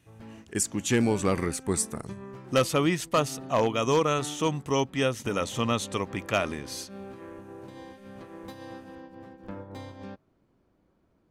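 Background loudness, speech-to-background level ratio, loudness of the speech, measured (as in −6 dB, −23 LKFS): −44.5 LKFS, 17.0 dB, −27.5 LKFS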